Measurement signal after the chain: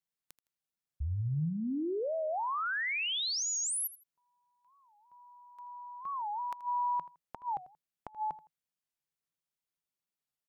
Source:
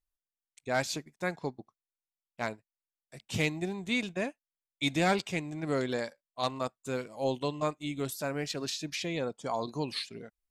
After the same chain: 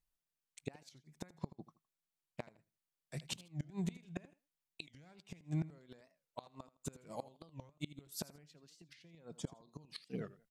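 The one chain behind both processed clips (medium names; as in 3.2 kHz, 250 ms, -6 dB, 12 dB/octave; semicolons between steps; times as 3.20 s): peaking EQ 160 Hz +11.5 dB 0.41 oct; compression 6:1, threshold -32 dBFS; inverted gate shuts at -28 dBFS, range -27 dB; on a send: feedback delay 81 ms, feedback 26%, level -17 dB; on the sum: warped record 45 rpm, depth 250 cents; trim +1 dB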